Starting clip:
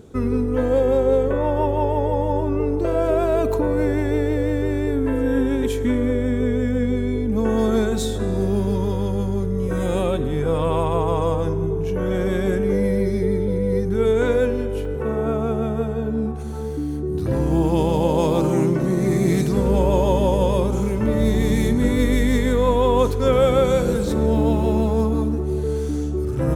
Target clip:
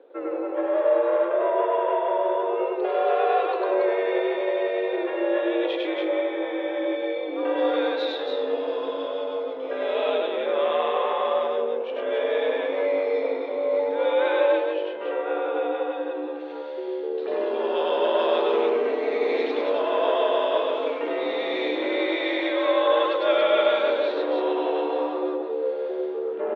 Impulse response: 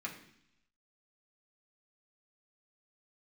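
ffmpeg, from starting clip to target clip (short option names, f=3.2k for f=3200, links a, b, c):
-filter_complex "[0:a]highshelf=f=2.7k:g=-10.5,acrossover=split=2700[a][b];[a]aeval=exprs='(tanh(5.01*val(0)+0.4)-tanh(0.4))/5.01':c=same[c];[b]dynaudnorm=f=430:g=9:m=13.5dB[d];[c][d]amix=inputs=2:normalize=0,asettb=1/sr,asplit=3[e][f][g];[e]atrim=end=13.794[h];[f]atrim=start=13.79:end=14.56,asetpts=PTS-STARTPTS,afade=t=in:d=0.004:c=qsin,afade=t=out:st=0.766:d=0.004:c=qsin,aeval=exprs='val(0)+0.02*sin(2*PI*790*n/s)':c=same[i];[g]atrim=start=14.556[j];[h][i]acrossfade=d=0.004:c1=hsin:c2=qsin[k];[k][j]acrossfade=d=0.004:c1=qsin:c2=hsin,asplit=2[l][m];[m]aecho=0:1:99.13|279.9:0.891|0.631[n];[l][n]amix=inputs=2:normalize=0,highpass=f=300:t=q:w=0.5412,highpass=f=300:t=q:w=1.307,lowpass=f=3.5k:t=q:w=0.5176,lowpass=f=3.5k:t=q:w=0.7071,lowpass=f=3.5k:t=q:w=1.932,afreqshift=78,volume=-2dB"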